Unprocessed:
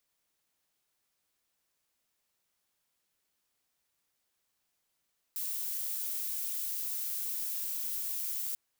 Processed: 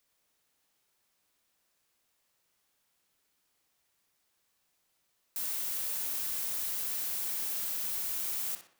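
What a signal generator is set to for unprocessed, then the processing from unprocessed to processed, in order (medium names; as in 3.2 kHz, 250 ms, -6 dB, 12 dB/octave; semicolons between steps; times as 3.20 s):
noise violet, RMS -35.5 dBFS 3.19 s
in parallel at -6.5 dB: integer overflow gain 32.5 dB; on the sum: tape echo 62 ms, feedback 51%, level -4 dB, low-pass 3.9 kHz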